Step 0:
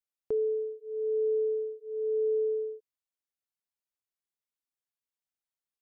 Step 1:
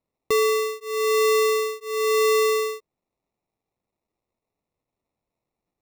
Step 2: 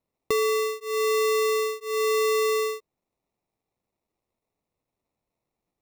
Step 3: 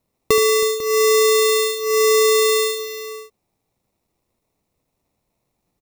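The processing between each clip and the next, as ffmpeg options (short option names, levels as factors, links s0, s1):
-af "acrusher=samples=28:mix=1:aa=0.000001,volume=2.66"
-af "acompressor=threshold=0.0891:ratio=6"
-filter_complex "[0:a]bass=f=250:g=4,treble=f=4000:g=4,asplit=2[s0][s1];[s1]aecho=0:1:75|321|497:0.316|0.15|0.188[s2];[s0][s2]amix=inputs=2:normalize=0,volume=2.51"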